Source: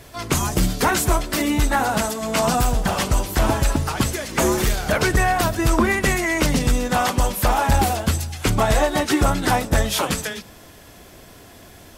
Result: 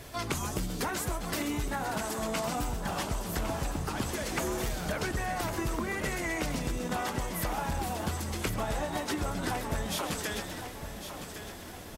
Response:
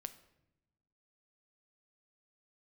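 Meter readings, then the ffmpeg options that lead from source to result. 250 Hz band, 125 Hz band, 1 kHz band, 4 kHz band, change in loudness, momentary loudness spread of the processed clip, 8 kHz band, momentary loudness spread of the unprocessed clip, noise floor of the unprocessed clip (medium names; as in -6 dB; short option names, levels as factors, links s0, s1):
-12.0 dB, -13.0 dB, -13.0 dB, -11.5 dB, -13.0 dB, 6 LU, -12.0 dB, 4 LU, -45 dBFS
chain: -filter_complex "[0:a]asplit=2[s0][s1];[s1]asplit=5[s2][s3][s4][s5][s6];[s2]adelay=129,afreqshift=130,volume=0.251[s7];[s3]adelay=258,afreqshift=260,volume=0.123[s8];[s4]adelay=387,afreqshift=390,volume=0.0603[s9];[s5]adelay=516,afreqshift=520,volume=0.0295[s10];[s6]adelay=645,afreqshift=650,volume=0.0145[s11];[s7][s8][s9][s10][s11]amix=inputs=5:normalize=0[s12];[s0][s12]amix=inputs=2:normalize=0,acompressor=threshold=0.0447:ratio=12,asplit=2[s13][s14];[s14]aecho=0:1:1107|2214|3321|4428|5535:0.316|0.136|0.0585|0.0251|0.0108[s15];[s13][s15]amix=inputs=2:normalize=0,volume=0.75"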